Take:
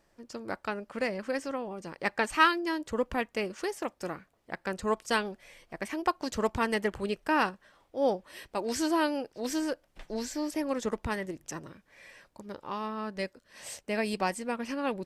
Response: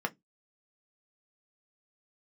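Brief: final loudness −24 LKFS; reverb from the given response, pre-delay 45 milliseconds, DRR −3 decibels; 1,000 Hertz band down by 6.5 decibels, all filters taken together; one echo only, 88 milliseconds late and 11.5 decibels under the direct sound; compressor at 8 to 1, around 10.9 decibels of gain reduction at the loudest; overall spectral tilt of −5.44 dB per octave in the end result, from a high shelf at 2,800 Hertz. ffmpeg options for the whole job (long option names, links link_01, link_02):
-filter_complex "[0:a]equalizer=frequency=1000:width_type=o:gain=-7,highshelf=frequency=2800:gain=-9,acompressor=threshold=-35dB:ratio=8,aecho=1:1:88:0.266,asplit=2[link_01][link_02];[1:a]atrim=start_sample=2205,adelay=45[link_03];[link_02][link_03]afir=irnorm=-1:irlink=0,volume=-3dB[link_04];[link_01][link_04]amix=inputs=2:normalize=0,volume=12dB"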